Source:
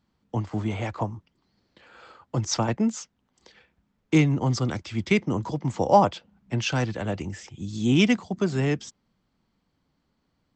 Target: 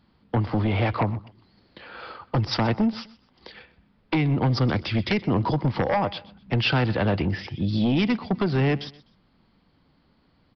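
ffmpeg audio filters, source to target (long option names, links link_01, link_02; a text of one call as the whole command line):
ffmpeg -i in.wav -af "acompressor=threshold=-25dB:ratio=12,aresample=11025,aeval=exprs='0.141*sin(PI/2*2*val(0)/0.141)':channel_layout=same,aresample=44100,aecho=1:1:126|252:0.106|0.0318" out.wav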